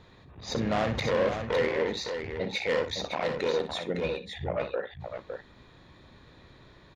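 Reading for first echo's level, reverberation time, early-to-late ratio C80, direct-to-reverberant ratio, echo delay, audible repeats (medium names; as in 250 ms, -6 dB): -10.0 dB, no reverb, no reverb, no reverb, 61 ms, 2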